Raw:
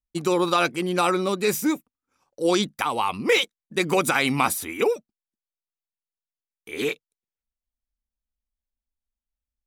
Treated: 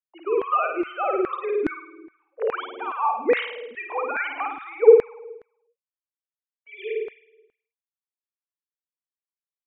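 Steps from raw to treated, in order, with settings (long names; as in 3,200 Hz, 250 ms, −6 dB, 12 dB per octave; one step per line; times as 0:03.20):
three sine waves on the formant tracks
flutter between parallel walls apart 9.1 metres, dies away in 0.83 s
auto-filter high-pass saw down 2.4 Hz 300–1,700 Hz
level −5.5 dB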